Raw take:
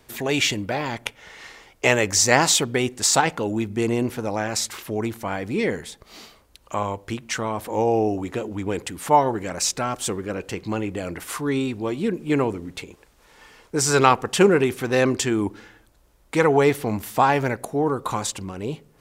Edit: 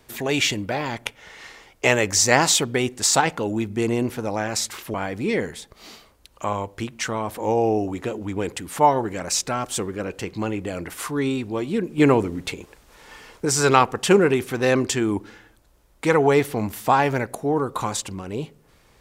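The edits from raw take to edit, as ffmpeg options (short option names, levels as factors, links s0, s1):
-filter_complex "[0:a]asplit=4[s0][s1][s2][s3];[s0]atrim=end=4.942[s4];[s1]atrim=start=5.238:end=12.282[s5];[s2]atrim=start=12.278:end=13.752,asetpts=PTS-STARTPTS,volume=1.78[s6];[s3]atrim=start=13.748[s7];[s4][s5]acrossfade=d=0.004:c1=hsin:c2=hsin[s8];[s8][s6]acrossfade=d=0.004:c1=hsin:c2=hsin[s9];[s9][s7]acrossfade=d=0.004:c1=hsin:c2=hsin"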